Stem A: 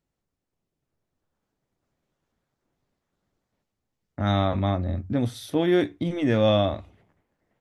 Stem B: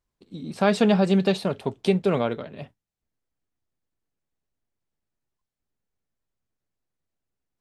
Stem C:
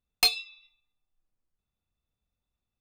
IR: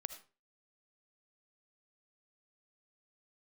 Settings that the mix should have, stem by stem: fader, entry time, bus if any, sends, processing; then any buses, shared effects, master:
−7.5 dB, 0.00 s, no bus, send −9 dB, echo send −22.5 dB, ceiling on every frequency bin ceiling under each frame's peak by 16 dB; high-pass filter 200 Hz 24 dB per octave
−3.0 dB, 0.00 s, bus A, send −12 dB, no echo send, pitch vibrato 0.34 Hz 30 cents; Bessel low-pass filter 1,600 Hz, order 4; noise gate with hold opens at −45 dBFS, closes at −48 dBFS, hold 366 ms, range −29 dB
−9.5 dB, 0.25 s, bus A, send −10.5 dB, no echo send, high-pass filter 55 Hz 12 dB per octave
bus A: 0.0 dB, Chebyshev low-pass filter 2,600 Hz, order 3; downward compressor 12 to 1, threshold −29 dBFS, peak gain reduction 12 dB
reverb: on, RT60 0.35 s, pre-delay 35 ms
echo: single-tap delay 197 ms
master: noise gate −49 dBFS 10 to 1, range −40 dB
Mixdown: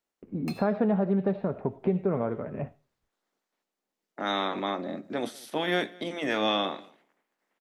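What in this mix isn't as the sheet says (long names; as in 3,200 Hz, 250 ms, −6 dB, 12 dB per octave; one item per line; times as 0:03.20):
stem B −3.0 dB → +5.0 dB
master: missing noise gate −49 dBFS 10 to 1, range −40 dB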